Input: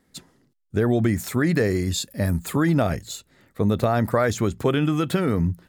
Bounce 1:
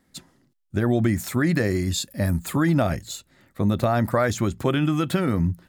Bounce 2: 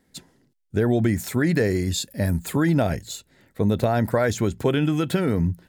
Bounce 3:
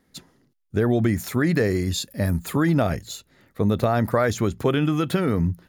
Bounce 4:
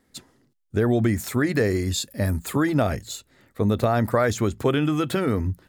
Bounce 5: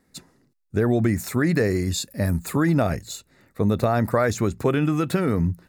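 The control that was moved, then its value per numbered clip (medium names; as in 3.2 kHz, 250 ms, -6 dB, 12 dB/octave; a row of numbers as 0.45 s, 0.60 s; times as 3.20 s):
band-stop, frequency: 440 Hz, 1.2 kHz, 8 kHz, 170 Hz, 3.2 kHz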